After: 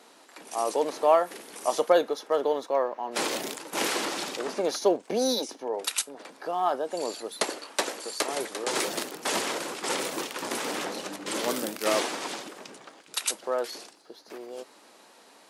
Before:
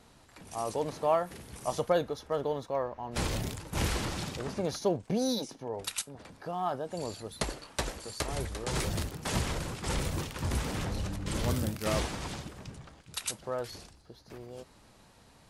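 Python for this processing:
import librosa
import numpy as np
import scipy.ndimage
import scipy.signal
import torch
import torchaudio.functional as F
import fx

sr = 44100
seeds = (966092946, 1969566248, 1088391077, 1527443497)

y = scipy.signal.sosfilt(scipy.signal.butter(4, 290.0, 'highpass', fs=sr, output='sos'), x)
y = F.gain(torch.from_numpy(y), 6.5).numpy()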